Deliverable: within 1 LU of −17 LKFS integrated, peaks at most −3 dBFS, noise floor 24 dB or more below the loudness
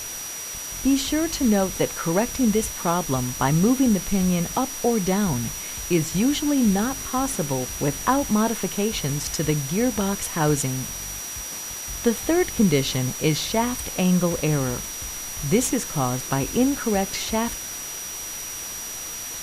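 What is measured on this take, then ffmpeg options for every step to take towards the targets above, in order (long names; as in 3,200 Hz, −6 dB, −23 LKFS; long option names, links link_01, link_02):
interfering tone 5,800 Hz; level of the tone −33 dBFS; background noise floor −33 dBFS; target noise floor −48 dBFS; integrated loudness −23.5 LKFS; sample peak −7.0 dBFS; target loudness −17.0 LKFS
→ -af "bandreject=frequency=5800:width=30"
-af "afftdn=noise_reduction=15:noise_floor=-33"
-af "volume=6.5dB,alimiter=limit=-3dB:level=0:latency=1"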